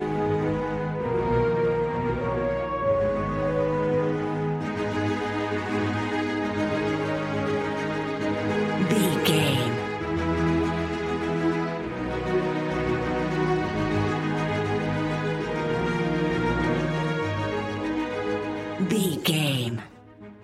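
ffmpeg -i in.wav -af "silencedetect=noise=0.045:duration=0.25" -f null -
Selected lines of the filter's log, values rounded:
silence_start: 19.81
silence_end: 20.44 | silence_duration: 0.63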